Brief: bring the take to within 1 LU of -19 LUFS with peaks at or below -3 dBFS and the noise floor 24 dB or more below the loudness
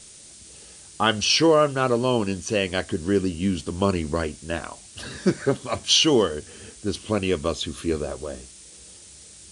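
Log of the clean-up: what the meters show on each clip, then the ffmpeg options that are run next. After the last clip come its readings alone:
noise floor -46 dBFS; noise floor target -47 dBFS; loudness -23.0 LUFS; peak -5.0 dBFS; loudness target -19.0 LUFS
-> -af "afftdn=nr=6:nf=-46"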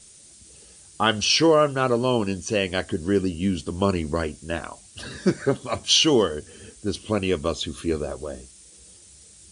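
noise floor -50 dBFS; loudness -23.0 LUFS; peak -5.0 dBFS; loudness target -19.0 LUFS
-> -af "volume=4dB,alimiter=limit=-3dB:level=0:latency=1"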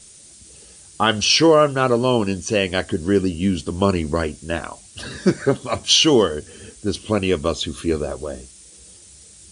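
loudness -19.0 LUFS; peak -3.0 dBFS; noise floor -46 dBFS

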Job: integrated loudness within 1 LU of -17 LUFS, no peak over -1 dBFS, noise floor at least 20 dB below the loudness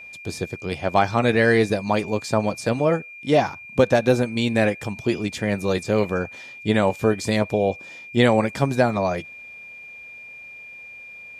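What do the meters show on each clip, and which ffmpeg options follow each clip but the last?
steady tone 2400 Hz; tone level -38 dBFS; loudness -22.0 LUFS; peak -3.5 dBFS; loudness target -17.0 LUFS
-> -af "bandreject=f=2.4k:w=30"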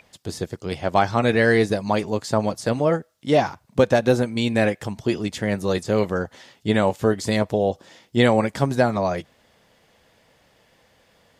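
steady tone none; loudness -22.0 LUFS; peak -4.0 dBFS; loudness target -17.0 LUFS
-> -af "volume=5dB,alimiter=limit=-1dB:level=0:latency=1"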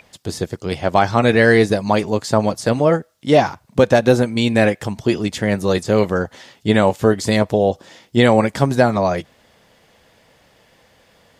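loudness -17.0 LUFS; peak -1.0 dBFS; noise floor -56 dBFS

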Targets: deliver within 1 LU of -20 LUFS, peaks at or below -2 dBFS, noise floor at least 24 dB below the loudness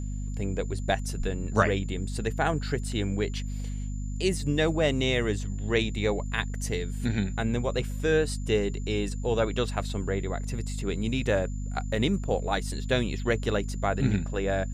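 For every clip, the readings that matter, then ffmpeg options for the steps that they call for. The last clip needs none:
hum 50 Hz; harmonics up to 250 Hz; hum level -30 dBFS; steady tone 7100 Hz; tone level -51 dBFS; loudness -28.5 LUFS; peak -8.5 dBFS; loudness target -20.0 LUFS
-> -af "bandreject=f=50:t=h:w=6,bandreject=f=100:t=h:w=6,bandreject=f=150:t=h:w=6,bandreject=f=200:t=h:w=6,bandreject=f=250:t=h:w=6"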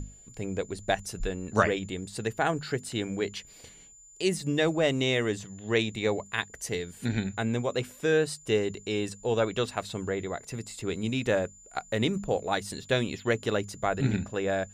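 hum none; steady tone 7100 Hz; tone level -51 dBFS
-> -af "bandreject=f=7.1k:w=30"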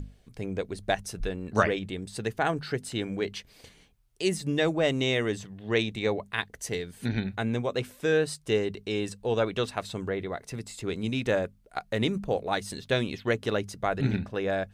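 steady tone none; loudness -30.0 LUFS; peak -7.5 dBFS; loudness target -20.0 LUFS
-> -af "volume=10dB,alimiter=limit=-2dB:level=0:latency=1"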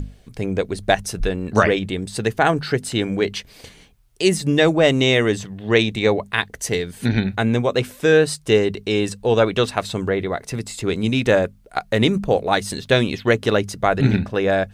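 loudness -20.0 LUFS; peak -2.0 dBFS; noise floor -49 dBFS

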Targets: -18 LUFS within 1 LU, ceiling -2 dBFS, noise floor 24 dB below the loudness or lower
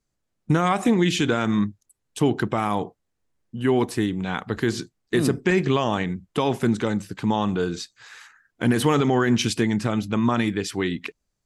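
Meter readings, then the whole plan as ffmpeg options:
loudness -23.5 LUFS; peak -10.0 dBFS; loudness target -18.0 LUFS
-> -af "volume=5.5dB"

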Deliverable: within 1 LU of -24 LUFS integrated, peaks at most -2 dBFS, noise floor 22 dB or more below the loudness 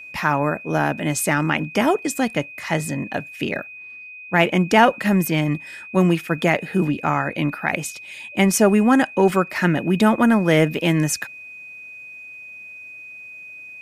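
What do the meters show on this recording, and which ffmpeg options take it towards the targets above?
steady tone 2500 Hz; tone level -36 dBFS; loudness -20.0 LUFS; peak -1.0 dBFS; loudness target -24.0 LUFS
-> -af "bandreject=f=2.5k:w=30"
-af "volume=-4dB"

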